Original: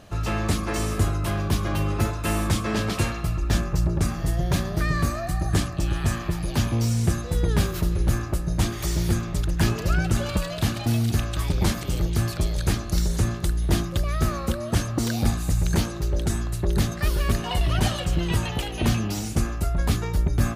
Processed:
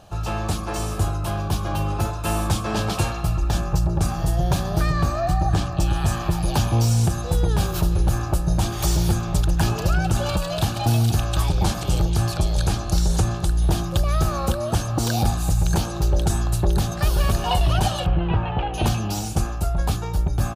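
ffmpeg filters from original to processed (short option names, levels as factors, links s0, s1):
-filter_complex "[0:a]asettb=1/sr,asplit=3[s0][s1][s2];[s0]atrim=end=4.924[s3];[s1]atrim=start=4.92:end=5.8,asetpts=PTS-STARTPTS,afade=t=in:d=0.004:c=qsin,afade=t=out:st=0.876:d=0.004:c=qsin,equalizer=f=11000:t=o:w=1.1:g=-11.5[s4];[s2]atrim=start=5.796[s5];[s3][s4]acrossfade=d=0.004:c1=hsin:c2=qsin[s6];[s6][s5]acrossfade=d=0.004:c1=qsin:c2=hsin,asettb=1/sr,asplit=3[s7][s8][s9];[s7]atrim=end=11.424[s10];[s8]atrim=start=11.42:end=13.67,asetpts=PTS-STARTPTS,afade=t=in:d=0.004:c=qsin,afade=t=out:st=2.246:d=0.004:c=qsin,lowpass=12000[s11];[s9]atrim=start=13.666[s12];[s10][s11]acrossfade=d=0.004:c1=hsin:c2=qsin[s13];[s13][s12]acrossfade=d=0.004:c1=qsin:c2=hsin,asplit=2[s14][s15];[s15]afade=t=in:st=16.81:d=0.01,afade=t=out:st=17.22:d=0.01,aecho=0:1:210|420|630|840:0.316228|0.126491|0.0505964|0.0202386[s16];[s14][s16]amix=inputs=2:normalize=0,asettb=1/sr,asplit=3[s17][s18][s19];[s17]atrim=end=18.064[s20];[s18]atrim=start=18.06:end=18.74,asetpts=PTS-STARTPTS,afade=t=in:d=0.004:c=qsin,afade=t=out:st=0.676:d=0.004:c=qsin,lowpass=f=2500:w=0.5412,lowpass=f=2500:w=1.3066[s21];[s19]atrim=start=18.736[s22];[s20][s21]acrossfade=d=0.004:c1=hsin:c2=qsin[s23];[s23][s22]acrossfade=d=0.004:c1=qsin:c2=hsin,equalizer=f=250:t=o:w=0.33:g=-9,equalizer=f=400:t=o:w=0.33:g=-3,equalizer=f=800:t=o:w=0.33:g=8,equalizer=f=2000:t=o:w=0.33:g=-11,dynaudnorm=f=630:g=11:m=3.76,alimiter=limit=0.316:level=0:latency=1:release=238"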